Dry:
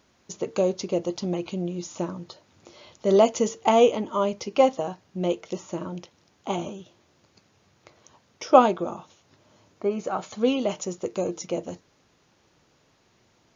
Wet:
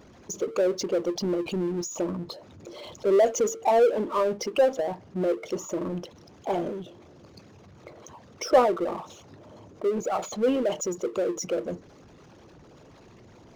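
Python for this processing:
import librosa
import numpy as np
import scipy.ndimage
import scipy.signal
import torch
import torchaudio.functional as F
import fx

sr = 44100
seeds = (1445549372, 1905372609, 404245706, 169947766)

y = fx.envelope_sharpen(x, sr, power=2.0)
y = fx.power_curve(y, sr, exponent=0.7)
y = y * librosa.db_to_amplitude(-5.5)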